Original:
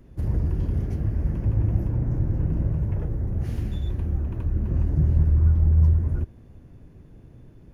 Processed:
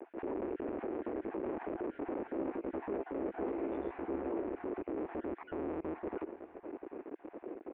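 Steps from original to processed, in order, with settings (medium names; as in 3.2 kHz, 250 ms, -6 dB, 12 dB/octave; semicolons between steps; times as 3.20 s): random holes in the spectrogram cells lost 28%; tilt shelf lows +9 dB, about 1.2 kHz; half-wave rectifier; elliptic band-pass 330–2500 Hz, stop band 40 dB; peak limiter -42 dBFS, peak gain reduction 21 dB; 2.34–4.41 s: doubling 15 ms -5 dB; on a send: delay 785 ms -21 dB; on the sum: trim +11.5 dB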